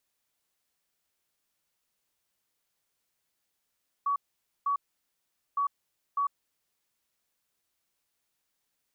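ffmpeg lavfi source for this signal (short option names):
-f lavfi -i "aevalsrc='0.0596*sin(2*PI*1130*t)*clip(min(mod(mod(t,1.51),0.6),0.1-mod(mod(t,1.51),0.6))/0.005,0,1)*lt(mod(t,1.51),1.2)':d=3.02:s=44100"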